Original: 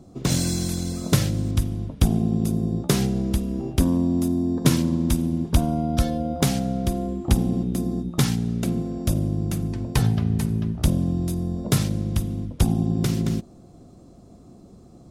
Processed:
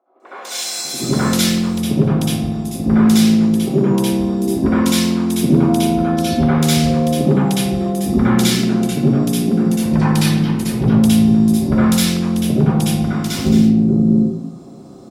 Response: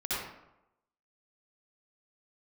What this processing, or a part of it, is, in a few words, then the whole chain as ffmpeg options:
far laptop microphone: -filter_complex "[0:a]acrossover=split=560|1800[link_01][link_02][link_03];[link_03]adelay=200[link_04];[link_01]adelay=780[link_05];[link_05][link_02][link_04]amix=inputs=3:normalize=0[link_06];[1:a]atrim=start_sample=2205[link_07];[link_06][link_07]afir=irnorm=-1:irlink=0,highpass=190,dynaudnorm=framelen=330:gausssize=5:maxgain=11.5dB,volume=-1dB"

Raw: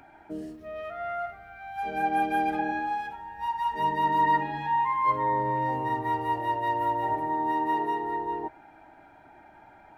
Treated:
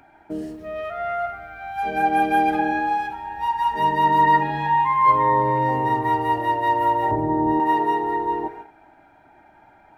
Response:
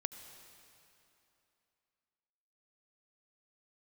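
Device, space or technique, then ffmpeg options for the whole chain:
keyed gated reverb: -filter_complex "[0:a]asplit=3[link_01][link_02][link_03];[1:a]atrim=start_sample=2205[link_04];[link_02][link_04]afir=irnorm=-1:irlink=0[link_05];[link_03]apad=whole_len=439796[link_06];[link_05][link_06]sidechaingate=range=-33dB:threshold=-48dB:ratio=16:detection=peak,volume=3dB[link_07];[link_01][link_07]amix=inputs=2:normalize=0,asettb=1/sr,asplit=3[link_08][link_09][link_10];[link_08]atrim=end=7.114[link_11];[link_09]atrim=start=7.11:end=7.6,asetpts=PTS-STARTPTS,afade=type=in:duration=0.004:curve=qsin,afade=type=out:start_time=0.486:duration=0.004:curve=qsin,tiltshelf=frequency=630:gain=10[link_12];[link_10]atrim=start=7.596[link_13];[link_11][link_12]acrossfade=duration=0.004:curve1=hsin:curve2=qsin[link_14];[link_14][link_13]acrossfade=duration=0.004:curve1=qsin:curve2=hsin"

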